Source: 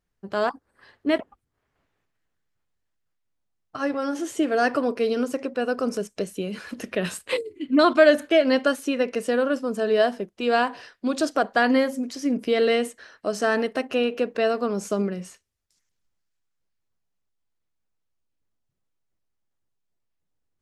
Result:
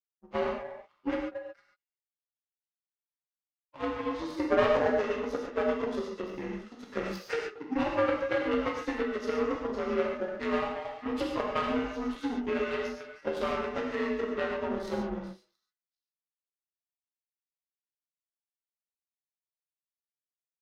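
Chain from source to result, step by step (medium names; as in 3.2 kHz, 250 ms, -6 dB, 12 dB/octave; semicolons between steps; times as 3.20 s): frequency axis rescaled in octaves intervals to 85%; repeats whose band climbs or falls 225 ms, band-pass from 660 Hz, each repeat 1.4 oct, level -7 dB; compression 6:1, threshold -25 dBFS, peak gain reduction 12.5 dB; 4.46–5.63 s: fifteen-band graphic EQ 250 Hz -4 dB, 630 Hz +7 dB, 6.3 kHz +4 dB; power-law waveshaper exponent 2; gated-style reverb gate 160 ms flat, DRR -0.5 dB; trim +4 dB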